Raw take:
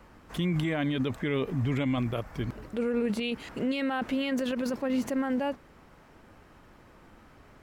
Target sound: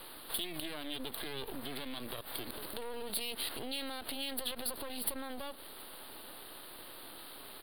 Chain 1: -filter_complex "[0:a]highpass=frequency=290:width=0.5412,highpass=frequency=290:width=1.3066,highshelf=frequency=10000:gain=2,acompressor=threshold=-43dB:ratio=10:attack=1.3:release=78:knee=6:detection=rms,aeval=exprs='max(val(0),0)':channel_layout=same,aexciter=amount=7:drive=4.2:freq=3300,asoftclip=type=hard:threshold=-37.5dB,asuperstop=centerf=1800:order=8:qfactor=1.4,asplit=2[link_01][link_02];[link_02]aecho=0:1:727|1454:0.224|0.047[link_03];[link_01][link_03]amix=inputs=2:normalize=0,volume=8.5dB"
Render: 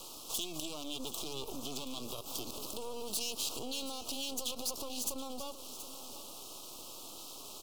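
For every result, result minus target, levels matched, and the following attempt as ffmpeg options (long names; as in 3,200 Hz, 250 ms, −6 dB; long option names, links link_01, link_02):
hard clipping: distortion +12 dB; 2,000 Hz band −7.5 dB; echo-to-direct +10.5 dB
-filter_complex "[0:a]highpass=frequency=290:width=0.5412,highpass=frequency=290:width=1.3066,highshelf=frequency=10000:gain=2,acompressor=threshold=-43dB:ratio=10:attack=1.3:release=78:knee=6:detection=rms,aeval=exprs='max(val(0),0)':channel_layout=same,aexciter=amount=7:drive=4.2:freq=3300,asoftclip=type=hard:threshold=-29dB,asuperstop=centerf=1800:order=8:qfactor=1.4,asplit=2[link_01][link_02];[link_02]aecho=0:1:727|1454:0.224|0.047[link_03];[link_01][link_03]amix=inputs=2:normalize=0,volume=8.5dB"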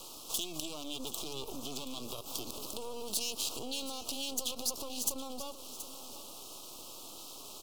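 2,000 Hz band −8.5 dB; echo-to-direct +10.5 dB
-filter_complex "[0:a]highpass=frequency=290:width=0.5412,highpass=frequency=290:width=1.3066,highshelf=frequency=10000:gain=2,acompressor=threshold=-43dB:ratio=10:attack=1.3:release=78:knee=6:detection=rms,aeval=exprs='max(val(0),0)':channel_layout=same,aexciter=amount=7:drive=4.2:freq=3300,asoftclip=type=hard:threshold=-29dB,asuperstop=centerf=6400:order=8:qfactor=1.4,asplit=2[link_01][link_02];[link_02]aecho=0:1:727|1454:0.224|0.047[link_03];[link_01][link_03]amix=inputs=2:normalize=0,volume=8.5dB"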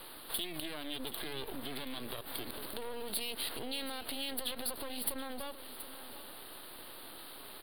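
echo-to-direct +10.5 dB
-filter_complex "[0:a]highpass=frequency=290:width=0.5412,highpass=frequency=290:width=1.3066,highshelf=frequency=10000:gain=2,acompressor=threshold=-43dB:ratio=10:attack=1.3:release=78:knee=6:detection=rms,aeval=exprs='max(val(0),0)':channel_layout=same,aexciter=amount=7:drive=4.2:freq=3300,asoftclip=type=hard:threshold=-29dB,asuperstop=centerf=6400:order=8:qfactor=1.4,asplit=2[link_01][link_02];[link_02]aecho=0:1:727|1454:0.0668|0.014[link_03];[link_01][link_03]amix=inputs=2:normalize=0,volume=8.5dB"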